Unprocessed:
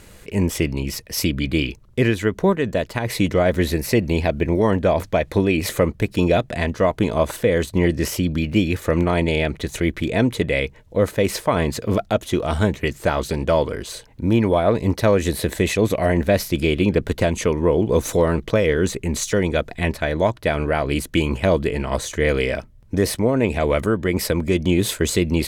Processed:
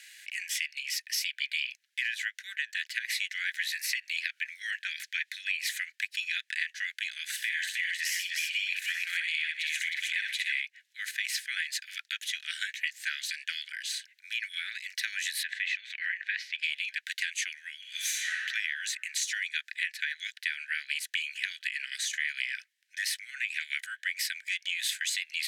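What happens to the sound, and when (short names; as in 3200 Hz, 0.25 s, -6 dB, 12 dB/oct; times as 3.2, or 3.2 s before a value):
7.36–10.61 tapped delay 62/118/311/876 ms -3.5/-17.5/-4.5/-16.5 dB
15.43–16.63 LPF 2800 Hz
17.78–18.33 reverb throw, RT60 1.8 s, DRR -5 dB
whole clip: steep high-pass 1600 Hz 96 dB/oct; high shelf 7600 Hz -10.5 dB; compressor, threshold -31 dBFS; gain +3 dB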